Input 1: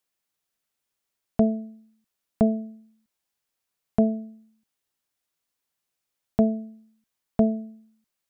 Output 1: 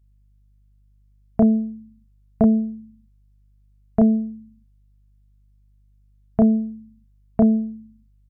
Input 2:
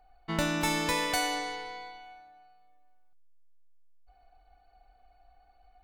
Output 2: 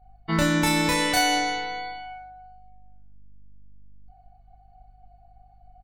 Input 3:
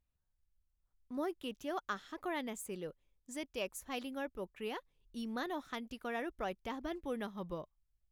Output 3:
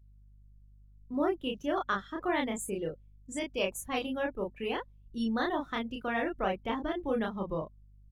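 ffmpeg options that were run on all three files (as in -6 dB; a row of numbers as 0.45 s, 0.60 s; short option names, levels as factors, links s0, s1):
-filter_complex "[0:a]asplit=2[s0][s1];[s1]adelay=31,volume=0.794[s2];[s0][s2]amix=inputs=2:normalize=0,asplit=2[s3][s4];[s4]alimiter=limit=0.0944:level=0:latency=1,volume=1.06[s5];[s3][s5]amix=inputs=2:normalize=0,aeval=exprs='val(0)+0.002*(sin(2*PI*50*n/s)+sin(2*PI*2*50*n/s)/2+sin(2*PI*3*50*n/s)/3+sin(2*PI*4*50*n/s)/4+sin(2*PI*5*50*n/s)/5)':c=same,afftdn=nr=16:nf=-45"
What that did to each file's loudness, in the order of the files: +5.0 LU, +7.5 LU, +8.5 LU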